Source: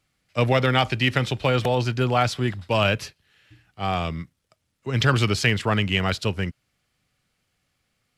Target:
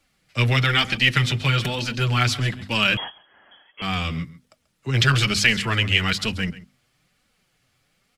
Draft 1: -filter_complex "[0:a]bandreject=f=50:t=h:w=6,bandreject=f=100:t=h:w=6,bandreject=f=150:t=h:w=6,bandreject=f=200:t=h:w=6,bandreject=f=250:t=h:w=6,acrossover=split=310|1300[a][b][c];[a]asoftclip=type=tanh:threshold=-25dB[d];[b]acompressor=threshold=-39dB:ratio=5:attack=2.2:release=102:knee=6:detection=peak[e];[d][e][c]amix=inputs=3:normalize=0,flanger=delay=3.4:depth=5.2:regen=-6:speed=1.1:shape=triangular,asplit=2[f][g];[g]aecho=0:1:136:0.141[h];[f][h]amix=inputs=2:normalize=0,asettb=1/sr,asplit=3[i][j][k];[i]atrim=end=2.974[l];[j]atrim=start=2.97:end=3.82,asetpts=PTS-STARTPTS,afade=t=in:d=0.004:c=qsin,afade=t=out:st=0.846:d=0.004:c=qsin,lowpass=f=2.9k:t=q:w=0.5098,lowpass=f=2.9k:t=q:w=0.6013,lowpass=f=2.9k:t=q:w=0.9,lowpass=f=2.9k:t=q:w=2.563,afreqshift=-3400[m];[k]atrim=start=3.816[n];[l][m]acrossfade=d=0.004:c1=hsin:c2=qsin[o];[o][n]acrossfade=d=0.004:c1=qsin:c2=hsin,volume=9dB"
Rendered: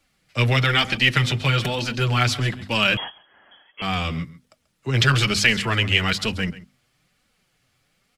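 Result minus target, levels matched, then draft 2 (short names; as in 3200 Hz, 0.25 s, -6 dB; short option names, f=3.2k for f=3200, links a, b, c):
compressor: peak gain reduction -7 dB
-filter_complex "[0:a]bandreject=f=50:t=h:w=6,bandreject=f=100:t=h:w=6,bandreject=f=150:t=h:w=6,bandreject=f=200:t=h:w=6,bandreject=f=250:t=h:w=6,acrossover=split=310|1300[a][b][c];[a]asoftclip=type=tanh:threshold=-25dB[d];[b]acompressor=threshold=-48dB:ratio=5:attack=2.2:release=102:knee=6:detection=peak[e];[d][e][c]amix=inputs=3:normalize=0,flanger=delay=3.4:depth=5.2:regen=-6:speed=1.1:shape=triangular,asplit=2[f][g];[g]aecho=0:1:136:0.141[h];[f][h]amix=inputs=2:normalize=0,asettb=1/sr,asplit=3[i][j][k];[i]atrim=end=2.974[l];[j]atrim=start=2.97:end=3.82,asetpts=PTS-STARTPTS,afade=t=in:d=0.004:c=qsin,afade=t=out:st=0.846:d=0.004:c=qsin,lowpass=f=2.9k:t=q:w=0.5098,lowpass=f=2.9k:t=q:w=0.6013,lowpass=f=2.9k:t=q:w=0.9,lowpass=f=2.9k:t=q:w=2.563,afreqshift=-3400[m];[k]atrim=start=3.816[n];[l][m]acrossfade=d=0.004:c1=hsin:c2=qsin[o];[o][n]acrossfade=d=0.004:c1=qsin:c2=hsin,volume=9dB"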